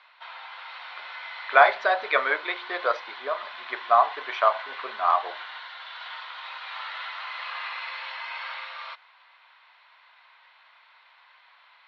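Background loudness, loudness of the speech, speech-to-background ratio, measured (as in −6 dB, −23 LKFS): −37.0 LKFS, −24.0 LKFS, 13.0 dB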